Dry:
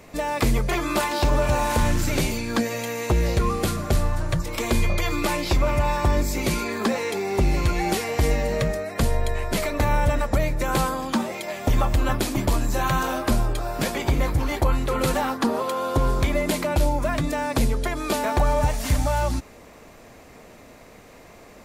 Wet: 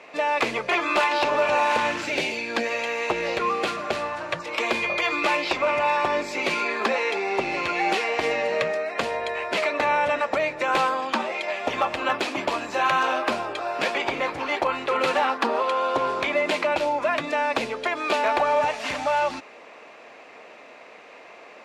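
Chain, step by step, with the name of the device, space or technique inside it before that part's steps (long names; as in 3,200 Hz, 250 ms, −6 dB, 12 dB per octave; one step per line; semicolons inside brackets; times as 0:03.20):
megaphone (band-pass filter 500–3,600 Hz; parametric band 2,600 Hz +6 dB 0.32 octaves; hard clipping −17.5 dBFS, distortion −26 dB)
0:02.06–0:02.63: parametric band 1,200 Hz −13 dB → −6 dB 0.59 octaves
level +4 dB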